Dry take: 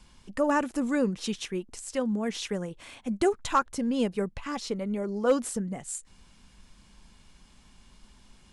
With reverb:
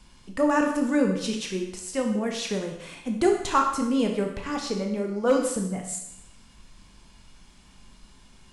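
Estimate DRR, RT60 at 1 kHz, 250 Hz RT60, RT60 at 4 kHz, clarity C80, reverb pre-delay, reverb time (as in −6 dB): 2.0 dB, 0.80 s, 0.85 s, 0.80 s, 8.0 dB, 17 ms, 0.80 s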